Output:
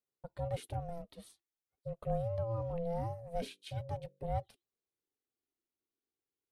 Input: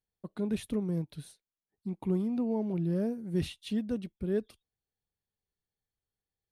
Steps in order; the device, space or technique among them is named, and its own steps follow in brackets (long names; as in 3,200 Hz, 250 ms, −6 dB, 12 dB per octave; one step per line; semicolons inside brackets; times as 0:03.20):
0:03.44–0:04.29: mains-hum notches 50/100/150/200 Hz
alien voice (ring modulation 340 Hz; flanger 0.44 Hz, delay 1.5 ms, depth 1.7 ms, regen −49%)
level +1 dB